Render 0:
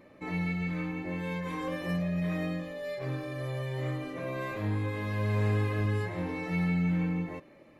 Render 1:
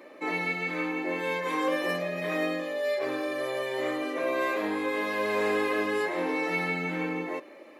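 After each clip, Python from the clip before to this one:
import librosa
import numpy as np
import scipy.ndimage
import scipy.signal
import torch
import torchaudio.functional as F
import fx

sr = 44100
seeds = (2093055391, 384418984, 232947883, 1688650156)

y = scipy.signal.sosfilt(scipy.signal.butter(4, 300.0, 'highpass', fs=sr, output='sos'), x)
y = y * 10.0 ** (8.5 / 20.0)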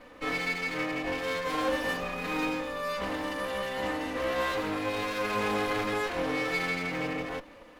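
y = fx.lower_of_two(x, sr, delay_ms=4.0)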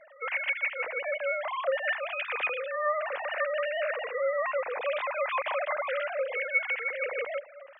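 y = fx.sine_speech(x, sr)
y = fx.rider(y, sr, range_db=4, speed_s=0.5)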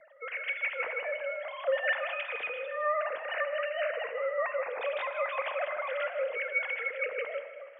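y = fx.rotary_switch(x, sr, hz=0.9, then_hz=5.0, switch_at_s=2.77)
y = y + 10.0 ** (-12.5 / 20.0) * np.pad(y, (int(157 * sr / 1000.0), 0))[:len(y)]
y = fx.rev_plate(y, sr, seeds[0], rt60_s=2.0, hf_ratio=0.8, predelay_ms=0, drr_db=10.0)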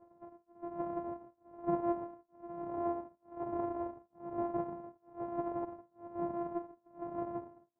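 y = np.r_[np.sort(x[:len(x) // 128 * 128].reshape(-1, 128), axis=1).ravel(), x[len(x) // 128 * 128:]]
y = fx.ladder_lowpass(y, sr, hz=990.0, resonance_pct=40)
y = y * (1.0 - 0.99 / 2.0 + 0.99 / 2.0 * np.cos(2.0 * np.pi * 1.1 * (np.arange(len(y)) / sr)))
y = y * 10.0 ** (4.0 / 20.0)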